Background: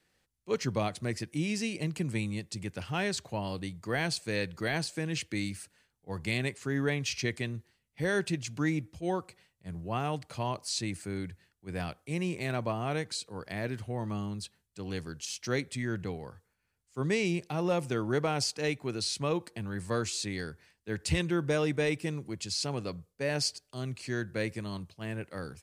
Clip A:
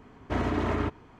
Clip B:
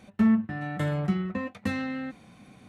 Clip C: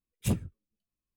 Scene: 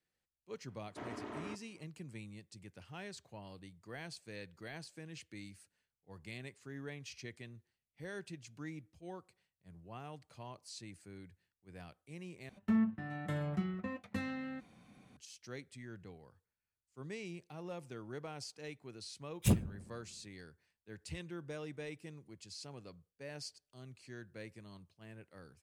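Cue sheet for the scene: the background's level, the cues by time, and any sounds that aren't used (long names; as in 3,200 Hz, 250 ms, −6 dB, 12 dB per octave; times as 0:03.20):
background −16 dB
0:00.66: mix in A −15.5 dB + high-pass filter 200 Hz
0:12.49: overwrite with B −9.5 dB
0:19.20: mix in C −0.5 dB + delay with a low-pass on its return 60 ms, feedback 77%, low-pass 870 Hz, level −21 dB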